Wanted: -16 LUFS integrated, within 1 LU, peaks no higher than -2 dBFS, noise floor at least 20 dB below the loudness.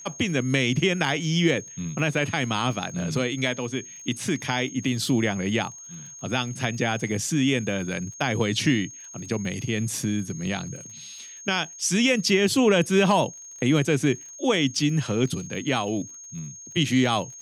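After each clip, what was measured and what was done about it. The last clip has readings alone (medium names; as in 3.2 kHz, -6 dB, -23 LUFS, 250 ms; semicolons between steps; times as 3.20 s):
tick rate 43 per s; steady tone 6.5 kHz; tone level -40 dBFS; loudness -24.5 LUFS; peak level -7.5 dBFS; loudness target -16.0 LUFS
-> de-click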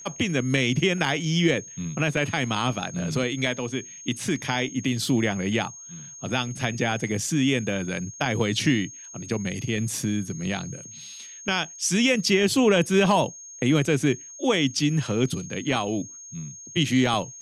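tick rate 0 per s; steady tone 6.5 kHz; tone level -40 dBFS
-> band-stop 6.5 kHz, Q 30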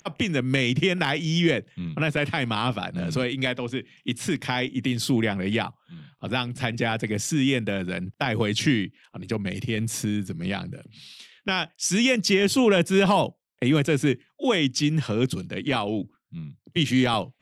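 steady tone not found; loudness -25.0 LUFS; peak level -7.5 dBFS; loudness target -16.0 LUFS
-> trim +9 dB; peak limiter -2 dBFS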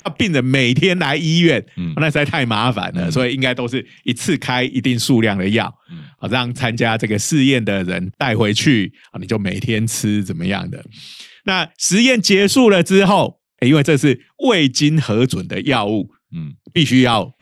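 loudness -16.0 LUFS; peak level -2.0 dBFS; noise floor -58 dBFS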